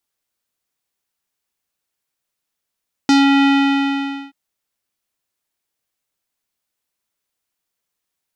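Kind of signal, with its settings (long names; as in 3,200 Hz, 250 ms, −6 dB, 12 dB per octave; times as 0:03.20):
subtractive voice square C#4 12 dB per octave, low-pass 2,900 Hz, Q 1.9, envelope 1 octave, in 0.17 s, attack 1.8 ms, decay 0.18 s, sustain −2 dB, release 0.87 s, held 0.36 s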